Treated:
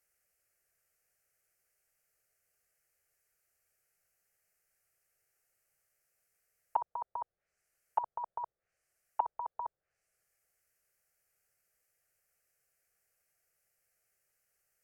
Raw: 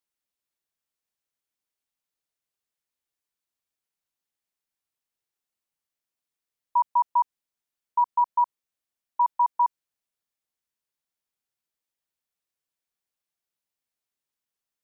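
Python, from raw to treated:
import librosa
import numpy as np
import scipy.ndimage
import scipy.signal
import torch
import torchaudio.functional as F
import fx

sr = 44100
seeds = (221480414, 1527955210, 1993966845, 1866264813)

y = fx.env_lowpass_down(x, sr, base_hz=780.0, full_db=-25.0)
y = fx.fixed_phaser(y, sr, hz=980.0, stages=6)
y = y * librosa.db_to_amplitude(12.5)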